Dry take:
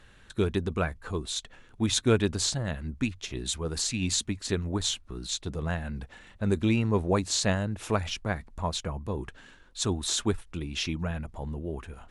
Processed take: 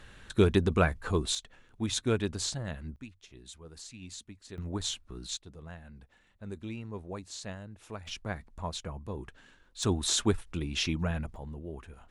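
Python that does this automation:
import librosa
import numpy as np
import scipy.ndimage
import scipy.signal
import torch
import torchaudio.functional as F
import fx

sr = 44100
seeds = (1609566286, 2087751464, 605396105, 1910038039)

y = fx.gain(x, sr, db=fx.steps((0.0, 3.5), (1.35, -5.5), (2.96, -17.0), (4.58, -5.0), (5.37, -15.0), (8.07, -6.0), (9.83, 0.5), (11.36, -6.5)))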